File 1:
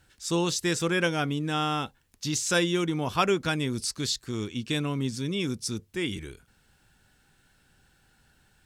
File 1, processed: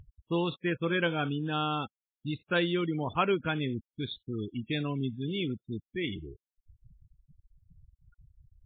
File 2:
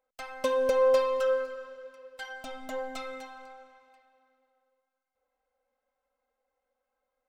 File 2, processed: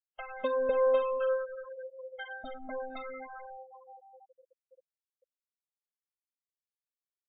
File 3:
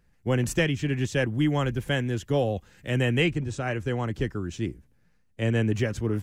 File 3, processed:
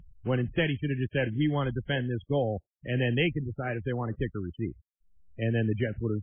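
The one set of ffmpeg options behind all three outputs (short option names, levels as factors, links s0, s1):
-af "acompressor=mode=upward:threshold=0.0251:ratio=2.5,afftfilt=real='re*gte(hypot(re,im),0.0316)':imag='im*gte(hypot(re,im),0.0316)':win_size=1024:overlap=0.75,volume=0.75" -ar 8000 -c:a libmp3lame -b:a 16k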